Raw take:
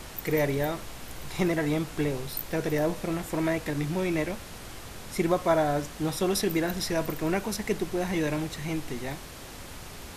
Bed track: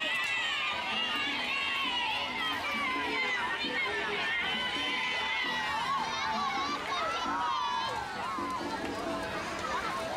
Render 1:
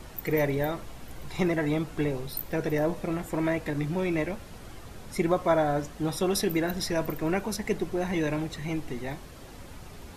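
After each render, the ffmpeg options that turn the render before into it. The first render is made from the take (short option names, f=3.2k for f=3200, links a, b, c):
-af "afftdn=nr=8:nf=-43"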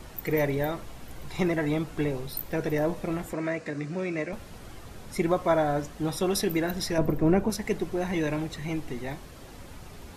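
-filter_complex "[0:a]asettb=1/sr,asplit=3[a][b][c];[a]atrim=end=3.334[d];[b]atrim=start=3.33:end=4.33,asetpts=PTS-STARTPTS,afade=t=in:d=0.004:c=qsin,afade=t=out:st=0.996:d=0.004:c=qsin,highpass=180,equalizer=f=330:t=q:w=4:g=-4,equalizer=f=870:t=q:w=4:g=-10,equalizer=f=3.3k:t=q:w=4:g=-9,lowpass=f=8.2k:w=0.5412,lowpass=f=8.2k:w=1.3066[e];[c]atrim=start=4.326[f];[d][e]acrossfade=d=0.004:c1=hsin:c2=qsin[g];[g][f]acrossfade=d=0.004:c1=qsin:c2=hsin,asettb=1/sr,asplit=3[h][i][j];[h]atrim=end=6.984[k];[i]atrim=start=6.98:end=7.5,asetpts=PTS-STARTPTS,afade=t=in:d=0.004:c=qsin,afade=t=out:st=0.516:d=0.004:c=qsin,tiltshelf=f=970:g=8[l];[j]atrim=start=7.496[m];[k][l]acrossfade=d=0.004:c1=hsin:c2=qsin[n];[n][m]acrossfade=d=0.004:c1=qsin:c2=hsin"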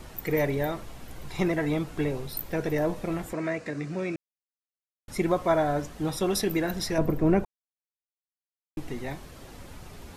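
-filter_complex "[0:a]asplit=5[a][b][c][d][e];[a]atrim=end=4.16,asetpts=PTS-STARTPTS,afade=t=out:st=4.156:d=0.004:c=hsin[f];[b]atrim=start=4.16:end=5.08,asetpts=PTS-STARTPTS,volume=0[g];[c]atrim=start=5.08:end=7.45,asetpts=PTS-STARTPTS,afade=t=in:d=0.004:c=hsin,afade=t=out:st=2.366:d=0.004:c=hsin[h];[d]atrim=start=7.45:end=8.77,asetpts=PTS-STARTPTS,volume=0[i];[e]atrim=start=8.77,asetpts=PTS-STARTPTS,afade=t=in:d=0.004:c=hsin[j];[f][g][h][i][j]concat=n=5:v=0:a=1"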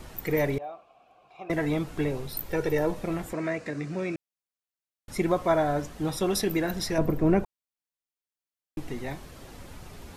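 -filter_complex "[0:a]asettb=1/sr,asplit=3[a][b][c];[a]atrim=end=0.584[d];[b]atrim=start=0.58:end=1.5,asetpts=PTS-STARTPTS,afade=t=in:d=0.004:c=qsin,afade=t=out:st=0.916:d=0.004:c=qsin,asplit=3[e][f][g];[e]bandpass=f=730:t=q:w=8,volume=0dB[h];[f]bandpass=f=1.09k:t=q:w=8,volume=-6dB[i];[g]bandpass=f=2.44k:t=q:w=8,volume=-9dB[j];[h][i][j]amix=inputs=3:normalize=0[k];[c]atrim=start=1.496[l];[d][k]acrossfade=d=0.004:c1=hsin:c2=qsin[m];[m][l]acrossfade=d=0.004:c1=qsin:c2=hsin,asettb=1/sr,asplit=3[n][o][p];[n]atrim=end=2.494[q];[o]atrim=start=2.49:end=2.91,asetpts=PTS-STARTPTS,afade=t=in:d=0.004:c=qsin,afade=t=out:st=0.416:d=0.004:c=qsin,aecho=1:1:2.2:0.54,atrim=end_sample=18522[r];[p]atrim=start=2.906[s];[q][r]acrossfade=d=0.004:c1=hsin:c2=qsin[t];[t][s]acrossfade=d=0.004:c1=qsin:c2=hsin"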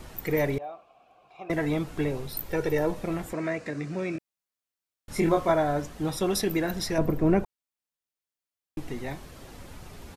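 -filter_complex "[0:a]asplit=3[a][b][c];[a]afade=t=out:st=4.14:d=0.02[d];[b]asplit=2[e][f];[f]adelay=25,volume=-2.5dB[g];[e][g]amix=inputs=2:normalize=0,afade=t=in:st=4.14:d=0.02,afade=t=out:st=5.5:d=0.02[h];[c]afade=t=in:st=5.5:d=0.02[i];[d][h][i]amix=inputs=3:normalize=0"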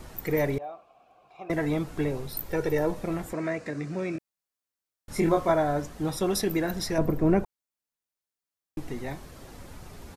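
-af "equalizer=f=2.9k:w=1.5:g=-3"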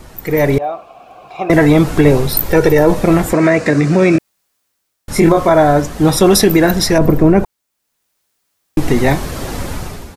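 -af "dynaudnorm=f=200:g=5:m=16dB,alimiter=level_in=7dB:limit=-1dB:release=50:level=0:latency=1"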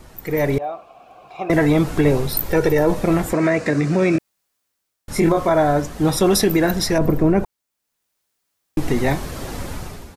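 -af "volume=-6.5dB"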